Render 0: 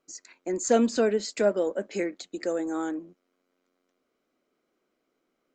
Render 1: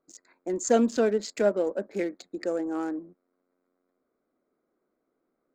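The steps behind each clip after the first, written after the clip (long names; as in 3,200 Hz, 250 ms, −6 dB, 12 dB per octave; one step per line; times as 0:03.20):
adaptive Wiener filter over 15 samples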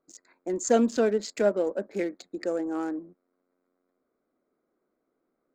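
no processing that can be heard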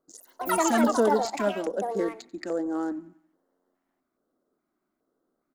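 repeating echo 90 ms, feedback 50%, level −21.5 dB
delay with pitch and tempo change per echo 81 ms, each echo +6 semitones, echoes 3
auto-filter notch square 1.2 Hz 480–2,400 Hz
level +1 dB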